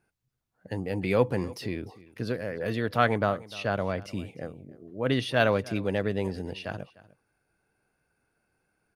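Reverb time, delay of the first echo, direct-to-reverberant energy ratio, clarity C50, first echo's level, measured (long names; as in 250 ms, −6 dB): no reverb audible, 301 ms, no reverb audible, no reverb audible, −20.5 dB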